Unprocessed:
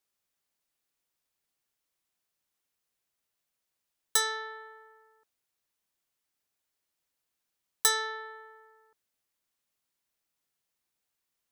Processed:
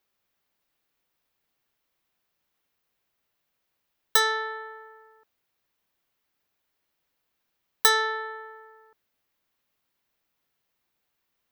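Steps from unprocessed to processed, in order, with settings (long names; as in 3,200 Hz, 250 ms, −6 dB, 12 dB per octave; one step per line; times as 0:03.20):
parametric band 8,600 Hz −11.5 dB 1.4 octaves
level +8.5 dB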